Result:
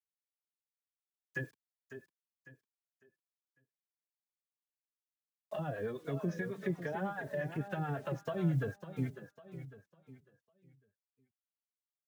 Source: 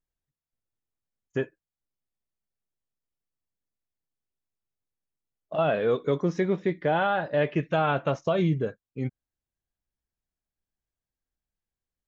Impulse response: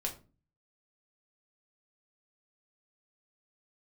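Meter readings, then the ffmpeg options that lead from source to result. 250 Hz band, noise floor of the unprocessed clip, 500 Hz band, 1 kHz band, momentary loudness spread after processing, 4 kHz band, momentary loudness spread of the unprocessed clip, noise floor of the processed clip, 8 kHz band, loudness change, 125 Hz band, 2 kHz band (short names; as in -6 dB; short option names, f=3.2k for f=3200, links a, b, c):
-9.0 dB, under -85 dBFS, -13.5 dB, -15.0 dB, 18 LU, -16.5 dB, 10 LU, under -85 dBFS, n/a, -11.5 dB, -6.0 dB, -9.5 dB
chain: -filter_complex "[0:a]acrossover=split=420|1200[a][b][c];[c]acompressor=threshold=-43dB:ratio=6[d];[a][b][d]amix=inputs=3:normalize=0,acrossover=split=540[e][f];[e]aeval=exprs='val(0)*(1-0.7/2+0.7/2*cos(2*PI*9.1*n/s))':c=same[g];[f]aeval=exprs='val(0)*(1-0.7/2-0.7/2*cos(2*PI*9.1*n/s))':c=same[h];[g][h]amix=inputs=2:normalize=0,equalizer=f=1.7k:w=7:g=13,asplit=2[i][j];[j]alimiter=level_in=4dB:limit=-24dB:level=0:latency=1:release=138,volume=-4dB,volume=2.5dB[k];[i][k]amix=inputs=2:normalize=0,acrusher=bits=8:mix=0:aa=0.000001,acrossover=split=180[l][m];[m]acompressor=threshold=-29dB:ratio=4[n];[l][n]amix=inputs=2:normalize=0,highpass=41,equalizer=f=740:w=0.4:g=-2.5,aecho=1:1:551|1102|1653|2204:0.335|0.111|0.0365|0.012,asplit=2[o][p];[p]adelay=3.7,afreqshift=-2.8[q];[o][q]amix=inputs=2:normalize=1,volume=-3dB"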